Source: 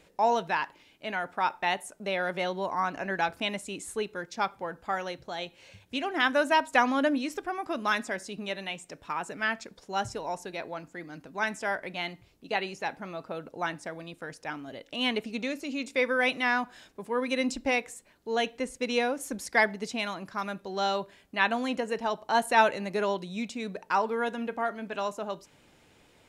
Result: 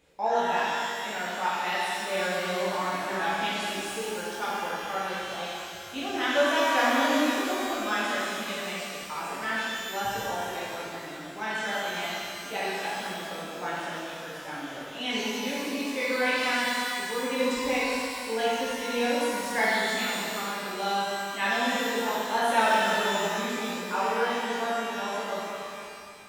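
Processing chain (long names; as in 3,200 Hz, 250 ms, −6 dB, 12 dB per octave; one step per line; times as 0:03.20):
tape wow and flutter 21 cents
reverb with rising layers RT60 2.5 s, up +12 semitones, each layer −8 dB, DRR −9 dB
level −8.5 dB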